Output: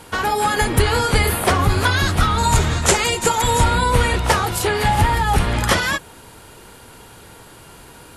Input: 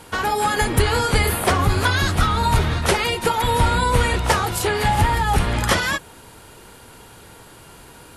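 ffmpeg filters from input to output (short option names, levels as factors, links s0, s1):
-filter_complex "[0:a]asettb=1/sr,asplit=3[s0][s1][s2];[s0]atrim=end=2.384[s3];[s1]atrim=start=2.38:end=3.64,asetpts=PTS-STARTPTS,afade=t=in:d=0.004:c=qsin,afade=t=out:st=1.256:d=0.004:c=qsin,equalizer=f=7200:w=2.6:g=14.5[s4];[s2]atrim=start=3.636[s5];[s3][s4]acrossfade=d=0.004:c1=hsin:c2=qsin[s6];[s6][s5]acrossfade=d=0.004:c1=qsin:c2=hsin,volume=1.19"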